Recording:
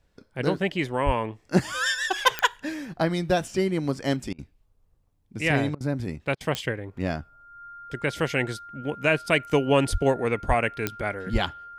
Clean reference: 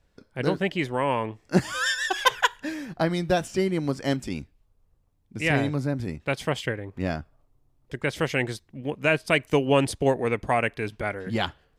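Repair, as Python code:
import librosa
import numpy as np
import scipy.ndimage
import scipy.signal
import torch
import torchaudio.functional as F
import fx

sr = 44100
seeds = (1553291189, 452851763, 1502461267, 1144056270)

y = fx.fix_declick_ar(x, sr, threshold=10.0)
y = fx.notch(y, sr, hz=1400.0, q=30.0)
y = fx.fix_deplosive(y, sr, at_s=(1.05, 9.91, 10.47, 11.32))
y = fx.fix_interpolate(y, sr, at_s=(4.33, 5.75, 6.35), length_ms=55.0)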